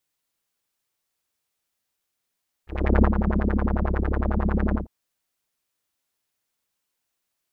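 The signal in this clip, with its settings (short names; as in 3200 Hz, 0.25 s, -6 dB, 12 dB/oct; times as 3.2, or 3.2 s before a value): synth patch with filter wobble C#2, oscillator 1 square, interval +19 st, sub -2.5 dB, filter lowpass, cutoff 350 Hz, Q 3.9, filter envelope 1.5 oct, filter decay 0.33 s, filter sustain 45%, attack 0.357 s, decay 0.08 s, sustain -7.5 dB, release 0.13 s, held 2.07 s, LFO 11 Hz, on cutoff 1.6 oct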